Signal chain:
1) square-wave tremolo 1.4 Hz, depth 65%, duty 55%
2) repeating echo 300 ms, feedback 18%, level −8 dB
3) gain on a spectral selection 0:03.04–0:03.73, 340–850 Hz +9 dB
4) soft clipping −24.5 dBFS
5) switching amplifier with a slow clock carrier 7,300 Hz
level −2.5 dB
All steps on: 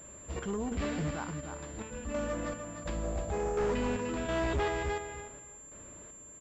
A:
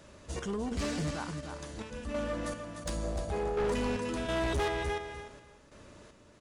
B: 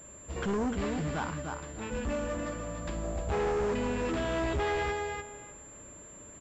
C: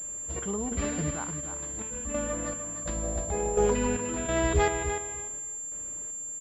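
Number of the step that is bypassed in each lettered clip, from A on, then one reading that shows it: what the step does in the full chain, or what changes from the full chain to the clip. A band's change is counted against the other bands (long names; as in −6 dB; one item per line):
5, 4 kHz band +4.5 dB
1, 8 kHz band −2.5 dB
4, distortion level −9 dB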